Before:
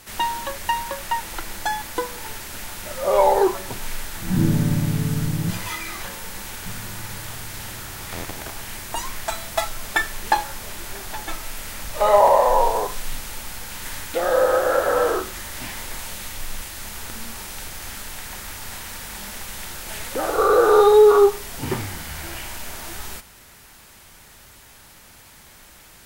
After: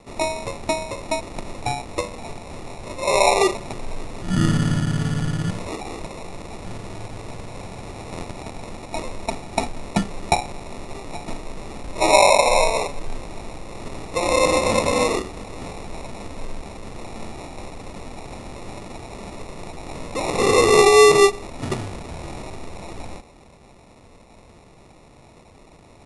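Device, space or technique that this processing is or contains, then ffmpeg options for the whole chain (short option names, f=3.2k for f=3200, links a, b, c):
crushed at another speed: -af "asetrate=88200,aresample=44100,acrusher=samples=14:mix=1:aa=0.000001,asetrate=22050,aresample=44100"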